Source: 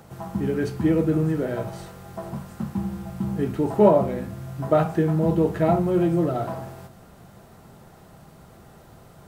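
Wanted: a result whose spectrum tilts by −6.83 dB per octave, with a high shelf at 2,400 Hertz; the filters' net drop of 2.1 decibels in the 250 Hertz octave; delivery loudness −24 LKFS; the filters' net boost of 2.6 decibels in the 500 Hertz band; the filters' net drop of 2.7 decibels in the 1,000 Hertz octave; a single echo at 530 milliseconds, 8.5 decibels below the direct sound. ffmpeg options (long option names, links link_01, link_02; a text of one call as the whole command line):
ffmpeg -i in.wav -af "equalizer=frequency=250:width_type=o:gain=-6,equalizer=frequency=500:width_type=o:gain=7,equalizer=frequency=1000:width_type=o:gain=-8.5,highshelf=frequency=2400:gain=6.5,aecho=1:1:530:0.376,volume=-1.5dB" out.wav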